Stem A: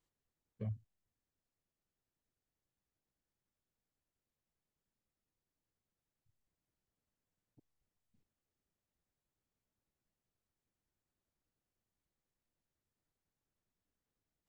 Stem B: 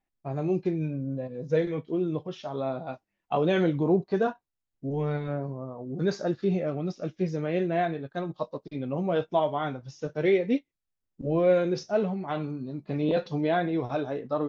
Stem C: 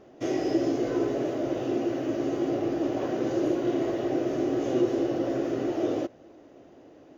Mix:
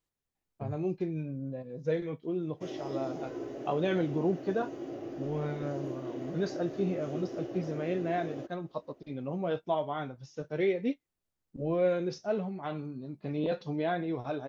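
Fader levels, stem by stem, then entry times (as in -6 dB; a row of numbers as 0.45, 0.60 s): -0.5, -5.5, -12.5 dB; 0.00, 0.35, 2.40 s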